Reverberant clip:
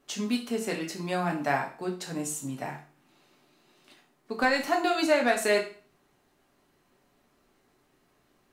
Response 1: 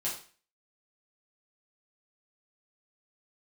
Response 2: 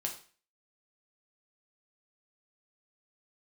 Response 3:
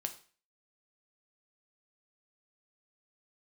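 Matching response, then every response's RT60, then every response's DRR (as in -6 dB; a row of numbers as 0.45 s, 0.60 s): 2; 0.40 s, 0.40 s, 0.40 s; -8.0 dB, 0.5 dB, 5.5 dB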